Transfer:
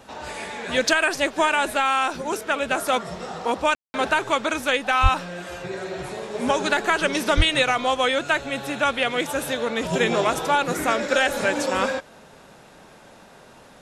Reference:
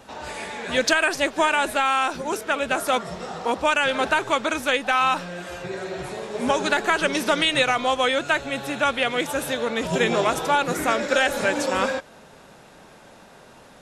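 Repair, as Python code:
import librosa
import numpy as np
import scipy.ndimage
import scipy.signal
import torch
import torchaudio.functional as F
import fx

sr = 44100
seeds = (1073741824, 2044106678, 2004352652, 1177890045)

y = fx.highpass(x, sr, hz=140.0, slope=24, at=(5.02, 5.14), fade=0.02)
y = fx.highpass(y, sr, hz=140.0, slope=24, at=(7.36, 7.48), fade=0.02)
y = fx.fix_ambience(y, sr, seeds[0], print_start_s=13.25, print_end_s=13.75, start_s=3.75, end_s=3.94)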